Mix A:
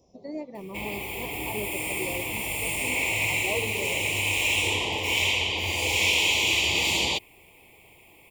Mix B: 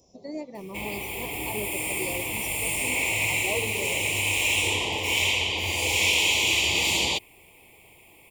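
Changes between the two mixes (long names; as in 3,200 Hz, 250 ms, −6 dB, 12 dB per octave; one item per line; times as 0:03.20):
speech: add high-shelf EQ 4,800 Hz +10.5 dB
master: add parametric band 9,600 Hz +4 dB 1.1 octaves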